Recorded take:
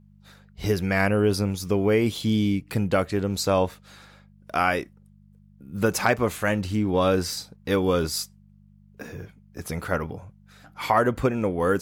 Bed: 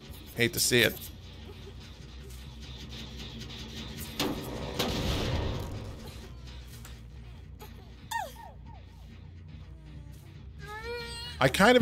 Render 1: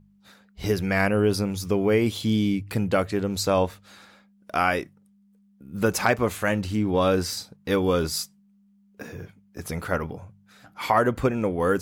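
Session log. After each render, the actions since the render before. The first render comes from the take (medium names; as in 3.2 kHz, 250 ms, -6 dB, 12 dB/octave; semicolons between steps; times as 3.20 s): de-hum 50 Hz, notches 3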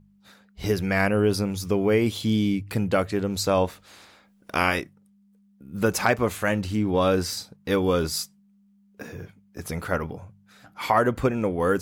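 3.67–4.79 s: spectral peaks clipped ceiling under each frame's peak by 13 dB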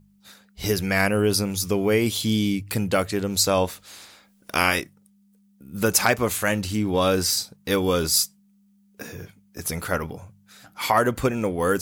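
treble shelf 3.7 kHz +12 dB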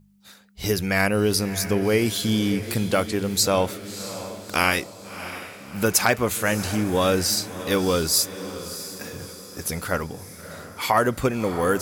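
echo that smears into a reverb 648 ms, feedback 49%, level -12.5 dB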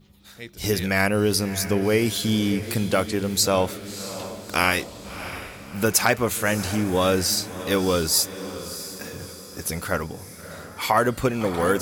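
add bed -12.5 dB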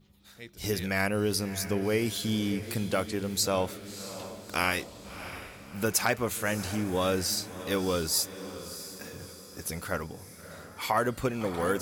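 trim -7 dB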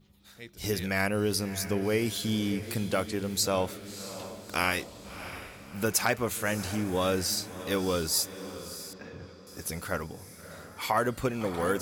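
8.93–9.47 s: distance through air 210 m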